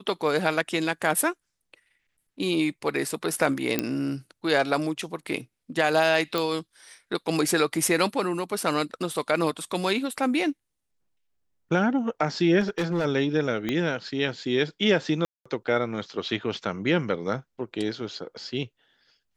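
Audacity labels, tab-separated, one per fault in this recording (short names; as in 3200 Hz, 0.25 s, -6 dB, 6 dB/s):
3.790000	3.790000	pop -8 dBFS
6.380000	6.380000	pop
12.600000	13.060000	clipped -21.5 dBFS
13.690000	13.690000	pop -14 dBFS
15.250000	15.460000	gap 0.205 s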